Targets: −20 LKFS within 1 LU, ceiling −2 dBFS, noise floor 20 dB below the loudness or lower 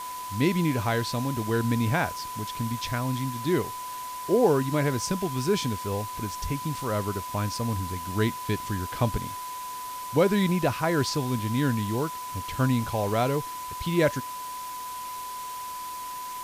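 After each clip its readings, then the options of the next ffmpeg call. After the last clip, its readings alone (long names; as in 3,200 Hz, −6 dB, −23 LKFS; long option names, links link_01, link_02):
interfering tone 1,000 Hz; level of the tone −34 dBFS; background noise floor −36 dBFS; target noise floor −48 dBFS; integrated loudness −28.0 LKFS; sample peak −10.5 dBFS; target loudness −20.0 LKFS
→ -af "bandreject=frequency=1000:width=30"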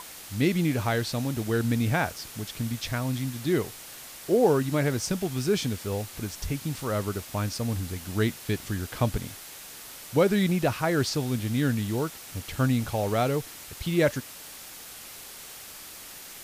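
interfering tone none found; background noise floor −44 dBFS; target noise floor −48 dBFS
→ -af "afftdn=noise_reduction=6:noise_floor=-44"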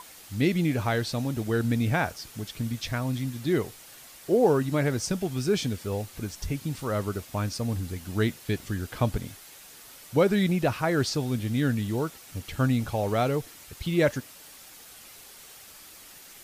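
background noise floor −49 dBFS; integrated loudness −28.0 LKFS; sample peak −11.0 dBFS; target loudness −20.0 LKFS
→ -af "volume=8dB"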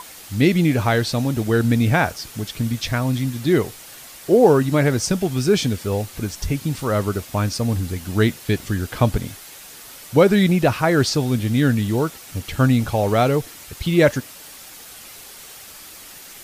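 integrated loudness −20.0 LKFS; sample peak −3.0 dBFS; background noise floor −41 dBFS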